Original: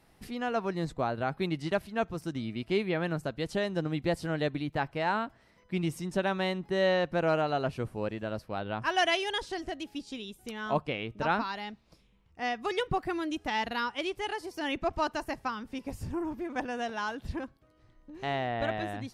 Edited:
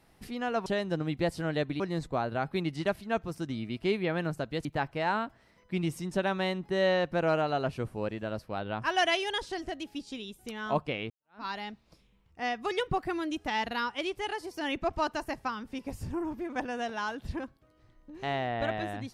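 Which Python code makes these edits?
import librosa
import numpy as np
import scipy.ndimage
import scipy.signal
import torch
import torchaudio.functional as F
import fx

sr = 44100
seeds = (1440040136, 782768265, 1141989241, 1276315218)

y = fx.edit(x, sr, fx.move(start_s=3.51, length_s=1.14, to_s=0.66),
    fx.fade_in_span(start_s=11.1, length_s=0.35, curve='exp'), tone=tone)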